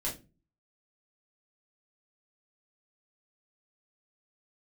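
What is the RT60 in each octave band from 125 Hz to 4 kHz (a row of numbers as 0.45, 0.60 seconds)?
0.60, 0.50, 0.35, 0.25, 0.25, 0.20 seconds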